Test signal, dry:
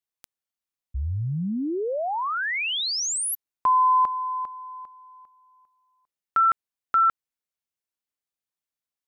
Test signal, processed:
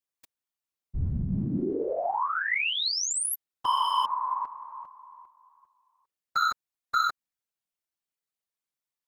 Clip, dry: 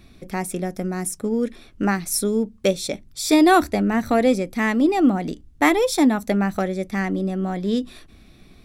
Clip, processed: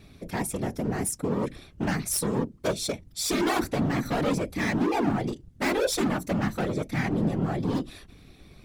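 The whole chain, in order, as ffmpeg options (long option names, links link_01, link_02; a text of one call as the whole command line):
ffmpeg -i in.wav -af "volume=22dB,asoftclip=hard,volume=-22dB,afftfilt=real='hypot(re,im)*cos(2*PI*random(0))':imag='hypot(re,im)*sin(2*PI*random(1))':win_size=512:overlap=0.75,volume=4.5dB" out.wav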